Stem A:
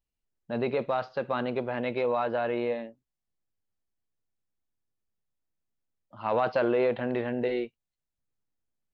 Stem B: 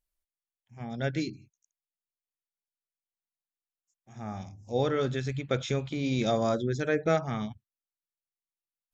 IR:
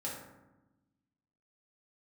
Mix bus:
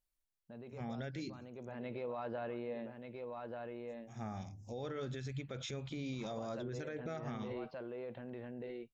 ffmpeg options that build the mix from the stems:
-filter_complex "[0:a]lowshelf=frequency=280:gain=8.5,alimiter=limit=-23dB:level=0:latency=1:release=89,volume=-8.5dB,afade=type=in:start_time=1.51:duration=0.53:silence=0.281838,asplit=2[link_01][link_02];[link_02]volume=-6dB[link_03];[1:a]volume=-2.5dB[link_04];[link_03]aecho=0:1:1185:1[link_05];[link_01][link_04][link_05]amix=inputs=3:normalize=0,alimiter=level_in=9.5dB:limit=-24dB:level=0:latency=1:release=162,volume=-9.5dB"

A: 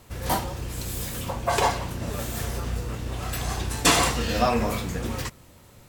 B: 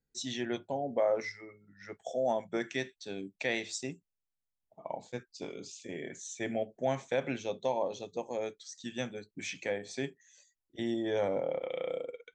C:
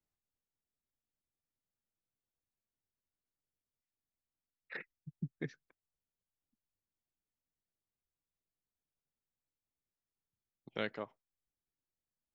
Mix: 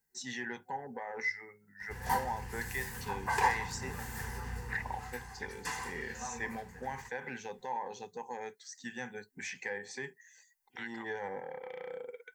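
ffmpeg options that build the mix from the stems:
ffmpeg -i stem1.wav -i stem2.wav -i stem3.wav -filter_complex "[0:a]adelay=1800,volume=-11.5dB,afade=type=out:start_time=4.71:duration=0.6:silence=0.266073[link_01];[1:a]alimiter=limit=-24dB:level=0:latency=1:release=55,asoftclip=type=tanh:threshold=-24dB,volume=-1dB[link_02];[2:a]highpass=frequency=690:width=0.5412,highpass=frequency=690:width=1.3066,crystalizer=i=5:c=0,volume=-5.5dB[link_03];[link_02][link_03]amix=inputs=2:normalize=0,lowshelf=frequency=130:gain=-7.5,alimiter=level_in=7dB:limit=-24dB:level=0:latency=1:release=167,volume=-7dB,volume=0dB[link_04];[link_01][link_04]amix=inputs=2:normalize=0,superequalizer=6b=0.355:8b=0.282:9b=2.82:11b=3.16:13b=0.562" out.wav

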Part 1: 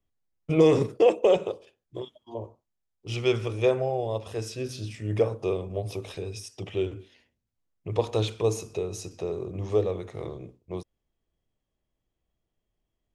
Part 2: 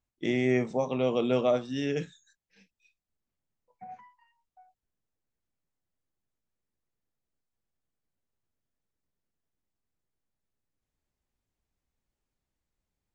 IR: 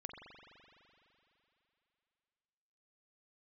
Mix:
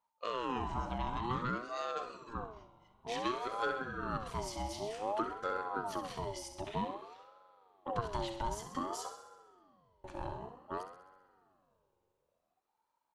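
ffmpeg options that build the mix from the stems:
-filter_complex "[0:a]acompressor=threshold=-27dB:ratio=6,volume=-4.5dB,asplit=3[link_01][link_02][link_03];[link_01]atrim=end=9.16,asetpts=PTS-STARTPTS,afade=type=out:start_time=9.156:duration=0.004:curve=hsin[link_04];[link_02]atrim=start=9.16:end=10.04,asetpts=PTS-STARTPTS,volume=0[link_05];[link_03]atrim=start=10.04,asetpts=PTS-STARTPTS,afade=type=in:duration=0.004:curve=hsin[link_06];[link_04][link_05][link_06]concat=n=3:v=0:a=1,asplit=3[link_07][link_08][link_09];[link_08]volume=-7dB[link_10];[link_09]volume=-7.5dB[link_11];[1:a]acompressor=threshold=-26dB:ratio=6,volume=-5.5dB,asplit=4[link_12][link_13][link_14][link_15];[link_13]volume=-11dB[link_16];[link_14]volume=-14dB[link_17];[link_15]apad=whole_len=579711[link_18];[link_07][link_18]sidechaincompress=threshold=-58dB:ratio=8:attack=16:release=130[link_19];[2:a]atrim=start_sample=2205[link_20];[link_10][link_16]amix=inputs=2:normalize=0[link_21];[link_21][link_20]afir=irnorm=-1:irlink=0[link_22];[link_11][link_17]amix=inputs=2:normalize=0,aecho=0:1:65|130|195|260|325|390|455|520|585:1|0.58|0.336|0.195|0.113|0.0656|0.0381|0.0221|0.0128[link_23];[link_19][link_12][link_22][link_23]amix=inputs=4:normalize=0,aeval=exprs='val(0)*sin(2*PI*690*n/s+690*0.35/0.54*sin(2*PI*0.54*n/s))':channel_layout=same"

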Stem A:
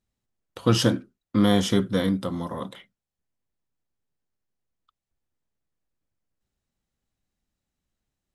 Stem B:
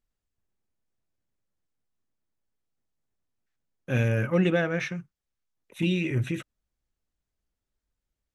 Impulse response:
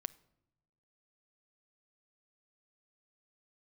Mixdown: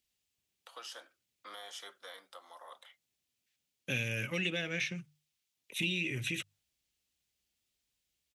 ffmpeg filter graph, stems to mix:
-filter_complex "[0:a]highpass=frequency=690:width=0.5412,highpass=frequency=690:width=1.3066,bandreject=frequency=1000:width=13,alimiter=limit=-24dB:level=0:latency=1:release=323,adelay=100,volume=-2dB[link_01];[1:a]highshelf=frequency=1900:width_type=q:width=1.5:gain=11.5,bandreject=frequency=50:width_type=h:width=6,bandreject=frequency=100:width_type=h:width=6,bandreject=frequency=150:width_type=h:width=6,volume=-3dB,asplit=2[link_02][link_03];[link_03]apad=whole_len=372234[link_04];[link_01][link_04]sidechaingate=range=-9dB:threshold=-59dB:ratio=16:detection=peak[link_05];[link_05][link_02]amix=inputs=2:normalize=0,highpass=68,acrossover=split=590|1500[link_06][link_07][link_08];[link_06]acompressor=threshold=-38dB:ratio=4[link_09];[link_07]acompressor=threshold=-51dB:ratio=4[link_10];[link_08]acompressor=threshold=-35dB:ratio=4[link_11];[link_09][link_10][link_11]amix=inputs=3:normalize=0"

